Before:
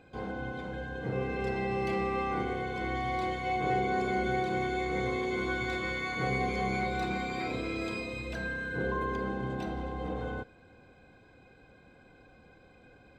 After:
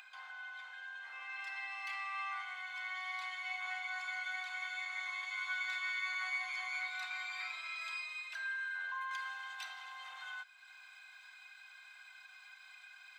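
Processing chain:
Bessel high-pass filter 1,800 Hz, order 8
high-shelf EQ 2,600 Hz −8 dB, from 0:09.11 +2.5 dB
upward compression, threshold −52 dBFS
level +4 dB

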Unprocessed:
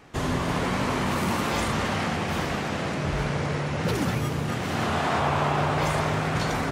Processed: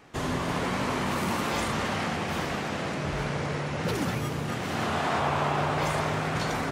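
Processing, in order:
low-shelf EQ 110 Hz −5.5 dB
level −2 dB

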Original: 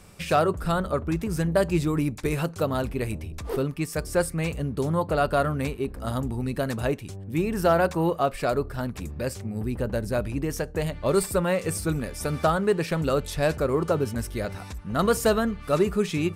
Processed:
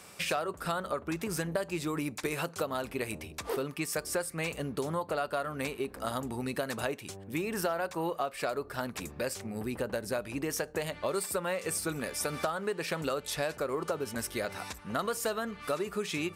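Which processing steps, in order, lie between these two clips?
high-pass filter 600 Hz 6 dB per octave
downward compressor 6 to 1, threshold −33 dBFS, peak gain reduction 14 dB
level +3.5 dB

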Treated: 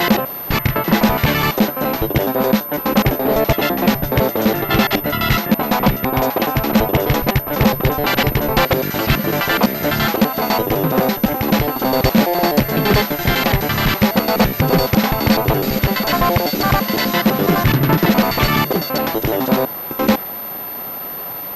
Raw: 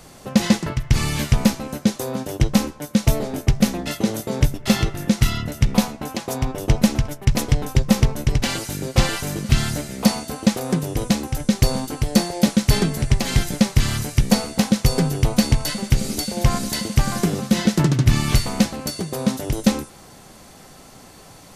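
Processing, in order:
slices reordered back to front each 84 ms, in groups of 6
high-shelf EQ 2,400 Hz −10 dB
mid-hump overdrive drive 24 dB, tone 4,800 Hz, clips at −3 dBFS
switching amplifier with a slow clock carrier 13,000 Hz

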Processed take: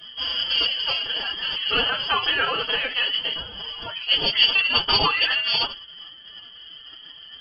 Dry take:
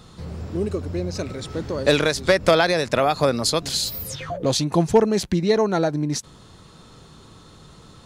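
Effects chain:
spectral magnitudes quantised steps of 15 dB
flat-topped bell 610 Hz −15.5 dB
soft clipping −12 dBFS, distortion −23 dB
convolution reverb, pre-delay 4 ms, DRR 1 dB
wrong playback speed 44.1 kHz file played as 48 kHz
voice inversion scrambler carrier 3,200 Hz
phase-vocoder pitch shift with formants kept +7.5 semitones

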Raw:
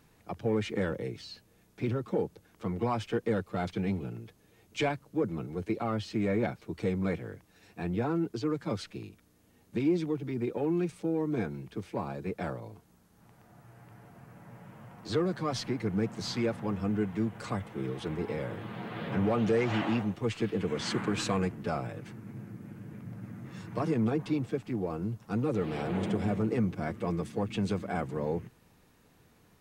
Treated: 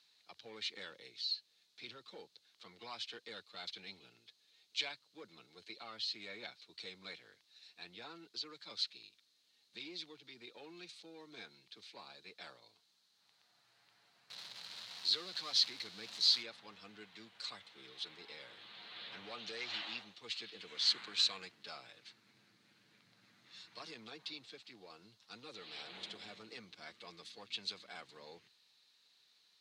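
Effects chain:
0:14.30–0:16.43: converter with a step at zero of −36.5 dBFS
resonant band-pass 4,100 Hz, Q 5.4
level +10.5 dB

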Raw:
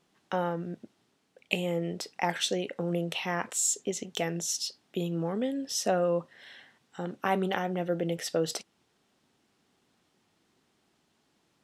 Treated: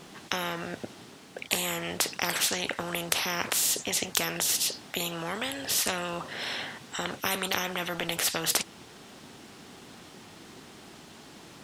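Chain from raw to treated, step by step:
every bin compressed towards the loudest bin 4 to 1
level +5.5 dB

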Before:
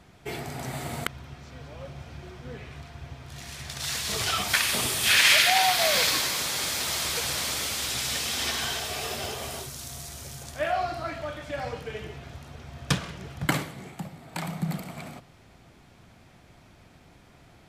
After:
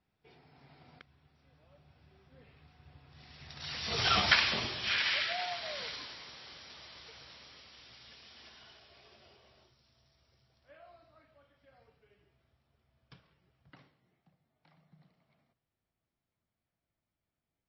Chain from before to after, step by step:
source passing by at 0:04.20, 18 m/s, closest 3.2 metres
level +1.5 dB
MP3 24 kbit/s 16,000 Hz

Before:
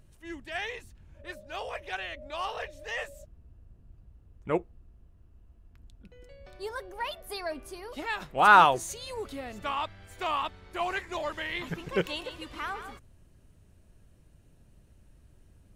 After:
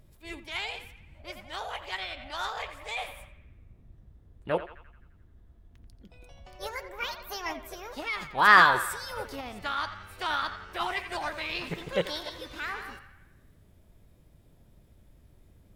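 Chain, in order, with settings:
feedback echo with a band-pass in the loop 87 ms, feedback 61%, band-pass 1,400 Hz, level −9.5 dB
formants moved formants +4 semitones

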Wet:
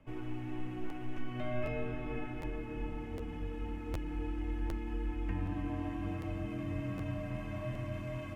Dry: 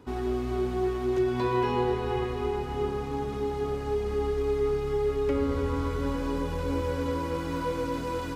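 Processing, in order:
frequency shifter −370 Hz
high shelf with overshoot 3,300 Hz −6.5 dB, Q 3
regular buffer underruns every 0.76 s, samples 512, repeat, from 0:00.89
level −8.5 dB

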